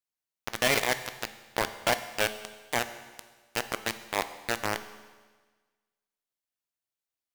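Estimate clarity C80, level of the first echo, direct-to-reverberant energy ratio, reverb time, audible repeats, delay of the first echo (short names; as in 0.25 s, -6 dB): 14.0 dB, none, 10.5 dB, 1.4 s, none, none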